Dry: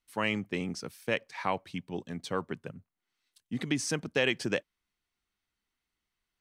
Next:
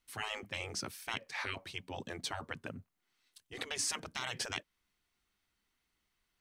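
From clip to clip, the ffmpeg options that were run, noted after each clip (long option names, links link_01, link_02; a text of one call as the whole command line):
ffmpeg -i in.wav -filter_complex "[0:a]afftfilt=real='re*lt(hypot(re,im),0.0501)':imag='im*lt(hypot(re,im),0.0501)':win_size=1024:overlap=0.75,asplit=2[link_01][link_02];[link_02]alimiter=level_in=5.5dB:limit=-24dB:level=0:latency=1:release=204,volume=-5.5dB,volume=2dB[link_03];[link_01][link_03]amix=inputs=2:normalize=0,volume=-3dB" out.wav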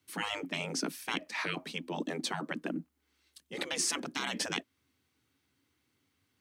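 ffmpeg -i in.wav -af "equalizer=frequency=200:width=1.4:gain=11,afreqshift=71,volume=3.5dB" out.wav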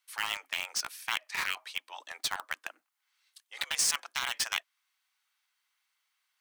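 ffmpeg -i in.wav -filter_complex "[0:a]highpass=frequency=880:width=0.5412,highpass=frequency=880:width=1.3066,asplit=2[link_01][link_02];[link_02]acrusher=bits=4:mix=0:aa=0.000001,volume=-4dB[link_03];[link_01][link_03]amix=inputs=2:normalize=0" out.wav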